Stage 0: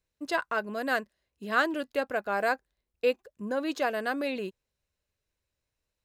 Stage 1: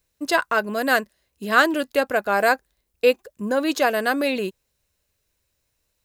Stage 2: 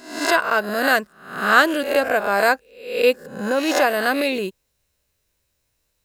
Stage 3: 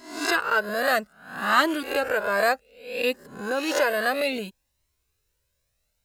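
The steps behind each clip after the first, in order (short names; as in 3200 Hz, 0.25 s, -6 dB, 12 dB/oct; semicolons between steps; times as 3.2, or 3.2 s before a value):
high shelf 6700 Hz +9.5 dB; gain +8.5 dB
spectral swells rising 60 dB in 0.58 s
cascading flanger rising 0.62 Hz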